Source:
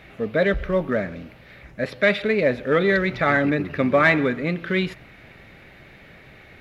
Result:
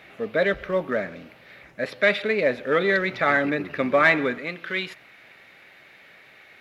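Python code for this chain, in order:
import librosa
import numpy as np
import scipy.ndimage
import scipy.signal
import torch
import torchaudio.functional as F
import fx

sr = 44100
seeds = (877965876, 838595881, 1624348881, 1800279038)

y = fx.highpass(x, sr, hz=fx.steps((0.0, 380.0), (4.38, 990.0)), slope=6)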